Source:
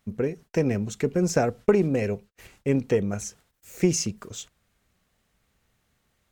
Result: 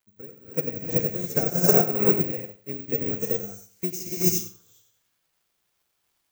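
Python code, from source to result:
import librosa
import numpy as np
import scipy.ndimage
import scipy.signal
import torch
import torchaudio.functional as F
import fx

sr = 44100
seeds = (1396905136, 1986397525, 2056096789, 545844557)

p1 = scipy.signal.sosfilt(scipy.signal.butter(2, 59.0, 'highpass', fs=sr, output='sos'), x)
p2 = fx.high_shelf(p1, sr, hz=6100.0, db=9.0)
p3 = fx.dmg_crackle(p2, sr, seeds[0], per_s=210.0, level_db=-33.0)
p4 = p3 + fx.echo_feedback(p3, sr, ms=90, feedback_pct=43, wet_db=-6.0, dry=0)
p5 = fx.rev_gated(p4, sr, seeds[1], gate_ms=420, shape='rising', drr_db=-4.5)
p6 = (np.kron(p5[::2], np.eye(2)[0]) * 2)[:len(p5)]
p7 = fx.upward_expand(p6, sr, threshold_db=-27.0, expansion=2.5)
y = F.gain(torch.from_numpy(p7), -4.0).numpy()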